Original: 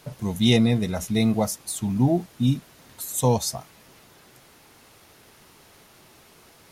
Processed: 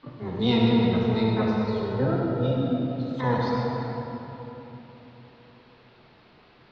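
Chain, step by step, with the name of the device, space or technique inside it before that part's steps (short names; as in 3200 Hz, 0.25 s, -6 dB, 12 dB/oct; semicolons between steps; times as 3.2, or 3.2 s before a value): shimmer-style reverb (harmoniser +12 st -4 dB; reverb RT60 3.8 s, pre-delay 49 ms, DRR -3 dB); steep low-pass 4500 Hz 48 dB/oct; 1.65–2.57 comb 2.1 ms, depth 50%; gain -7.5 dB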